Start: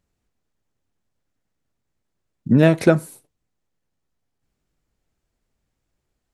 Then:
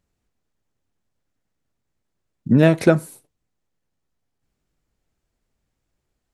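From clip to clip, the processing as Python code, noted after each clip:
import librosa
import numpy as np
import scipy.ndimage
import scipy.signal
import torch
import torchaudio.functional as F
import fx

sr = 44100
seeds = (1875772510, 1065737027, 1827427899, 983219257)

y = x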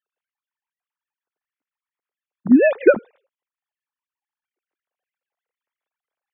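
y = fx.sine_speech(x, sr)
y = y * 10.0 ** (1.0 / 20.0)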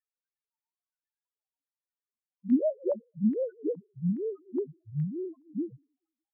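y = fx.echo_pitch(x, sr, ms=247, semitones=-3, count=3, db_per_echo=-3.0)
y = fx.spec_topn(y, sr, count=1)
y = fx.filter_lfo_lowpass(y, sr, shape='square', hz=1.2, low_hz=930.0, high_hz=1900.0, q=4.5)
y = y * 10.0 ** (-6.5 / 20.0)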